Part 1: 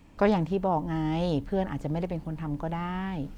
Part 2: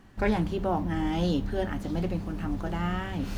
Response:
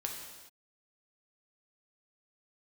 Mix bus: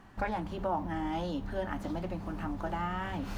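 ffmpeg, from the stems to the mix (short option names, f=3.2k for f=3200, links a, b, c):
-filter_complex "[0:a]volume=-20dB[a];[1:a]equalizer=f=480:w=1.2:g=-2.5,acompressor=threshold=-31dB:ratio=6,volume=-1,volume=-3dB[b];[a][b]amix=inputs=2:normalize=0,equalizer=f=900:w=0.69:g=8.5"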